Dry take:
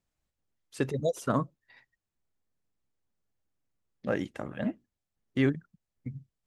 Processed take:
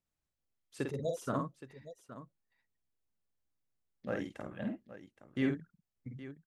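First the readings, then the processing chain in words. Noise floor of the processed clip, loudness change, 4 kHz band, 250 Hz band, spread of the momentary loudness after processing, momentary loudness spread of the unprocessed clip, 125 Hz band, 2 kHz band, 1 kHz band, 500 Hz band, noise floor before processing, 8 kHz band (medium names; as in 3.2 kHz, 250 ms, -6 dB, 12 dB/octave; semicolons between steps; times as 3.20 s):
under -85 dBFS, -6.5 dB, -6.0 dB, -5.5 dB, 18 LU, 15 LU, -7.5 dB, -6.0 dB, -6.0 dB, -6.5 dB, under -85 dBFS, -6.0 dB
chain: multi-tap echo 49/819 ms -4.5/-14 dB; trim -7.5 dB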